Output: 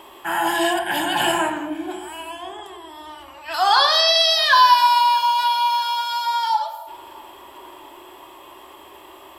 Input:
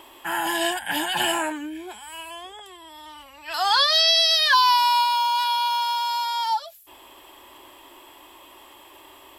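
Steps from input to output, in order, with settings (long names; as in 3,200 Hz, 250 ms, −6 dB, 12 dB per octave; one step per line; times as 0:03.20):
parametric band 710 Hz +4.5 dB 2.2 octaves
feedback echo with a low-pass in the loop 645 ms, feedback 65%, low-pass 1,900 Hz, level −24 dB
on a send at −3.5 dB: convolution reverb RT60 1.1 s, pre-delay 3 ms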